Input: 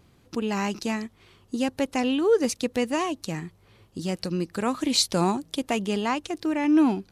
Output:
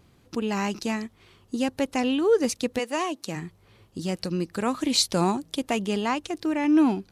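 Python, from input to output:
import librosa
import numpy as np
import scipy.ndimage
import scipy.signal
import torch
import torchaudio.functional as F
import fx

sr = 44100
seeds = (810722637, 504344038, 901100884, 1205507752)

y = fx.highpass(x, sr, hz=fx.line((2.78, 500.0), (3.35, 170.0)), slope=12, at=(2.78, 3.35), fade=0.02)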